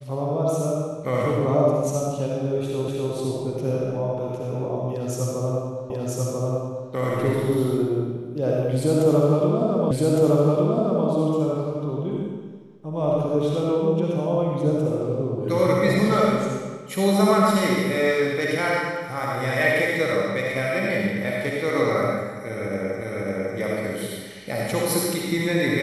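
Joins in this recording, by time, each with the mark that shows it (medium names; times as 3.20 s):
2.88 s: repeat of the last 0.25 s
5.90 s: repeat of the last 0.99 s
9.91 s: repeat of the last 1.16 s
23.01 s: repeat of the last 0.55 s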